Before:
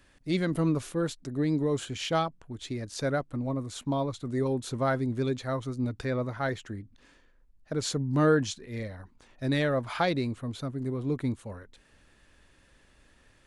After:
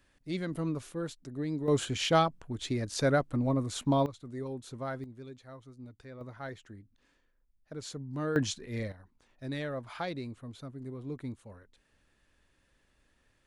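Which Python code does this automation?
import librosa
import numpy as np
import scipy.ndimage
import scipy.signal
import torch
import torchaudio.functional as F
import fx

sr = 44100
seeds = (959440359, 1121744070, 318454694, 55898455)

y = fx.gain(x, sr, db=fx.steps((0.0, -7.0), (1.68, 2.5), (4.06, -10.0), (5.04, -17.5), (6.21, -11.0), (8.36, 0.0), (8.92, -9.5)))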